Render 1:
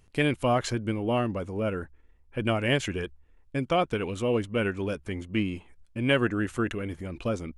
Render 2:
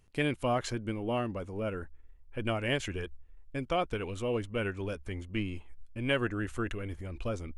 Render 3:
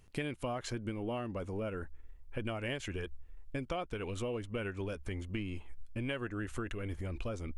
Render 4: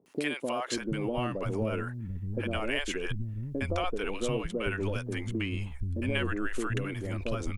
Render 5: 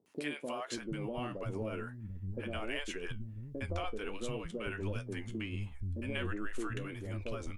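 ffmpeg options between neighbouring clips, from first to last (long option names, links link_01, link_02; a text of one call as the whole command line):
ffmpeg -i in.wav -af "asubboost=boost=5.5:cutoff=65,volume=-5dB" out.wav
ffmpeg -i in.wav -af "acompressor=threshold=-38dB:ratio=6,volume=3.5dB" out.wav
ffmpeg -i in.wav -filter_complex "[0:a]acrossover=split=200|630[link_01][link_02][link_03];[link_03]adelay=60[link_04];[link_01]adelay=740[link_05];[link_05][link_02][link_04]amix=inputs=3:normalize=0,volume=8.5dB" out.wav
ffmpeg -i in.wav -af "flanger=delay=8.9:depth=5:regen=59:speed=1.4:shape=sinusoidal,volume=-3dB" out.wav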